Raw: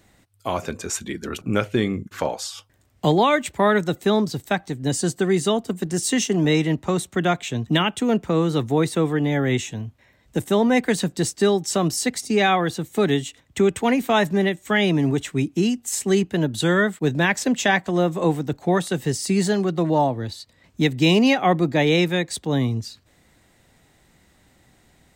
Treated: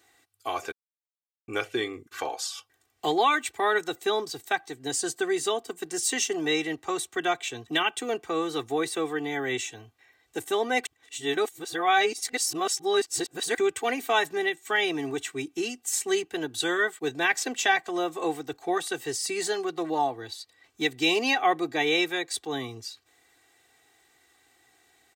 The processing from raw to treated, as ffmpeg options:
-filter_complex "[0:a]asplit=5[a][b][c][d][e];[a]atrim=end=0.72,asetpts=PTS-STARTPTS,afade=t=out:st=0.716:d=0.004:c=hsin[f];[b]atrim=start=0.72:end=1.48,asetpts=PTS-STARTPTS,volume=0[g];[c]atrim=start=1.48:end=10.852,asetpts=PTS-STARTPTS,afade=t=in:d=0.004:c=hsin[h];[d]atrim=start=10.848:end=13.582,asetpts=PTS-STARTPTS,areverse[i];[e]atrim=start=13.578[j];[f][g][h]concat=n=3:v=0:a=1[k];[k][i]acrossfade=d=0.004:c1=hsin:c2=hsin[l];[l][j]acrossfade=d=0.004:c1=hsin:c2=hsin,highpass=f=770:p=1,aecho=1:1:2.6:0.85,volume=-4dB"

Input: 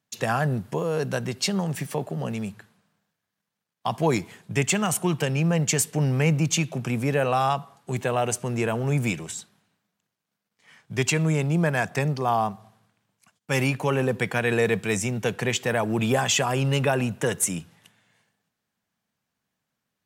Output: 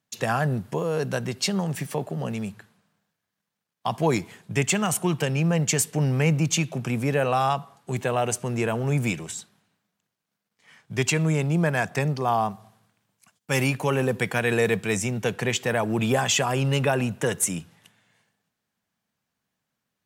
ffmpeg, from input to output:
-filter_complex "[0:a]asettb=1/sr,asplit=3[a][b][c];[a]atrim=end=12.494[d];[b]atrim=start=12.49:end=14.76,asetpts=PTS-STARTPTS,afade=t=in:d=0.004:c=qsin,afade=t=out:st=2.266:d=0.004:c=qsin,highshelf=f=6.5k:g=5[e];[c]atrim=start=14.756[f];[d][e]acrossfade=d=0.004:c1=hsin:c2=qsin[g];[g][f]acrossfade=d=0.004:c1=qsin:c2=hsin"

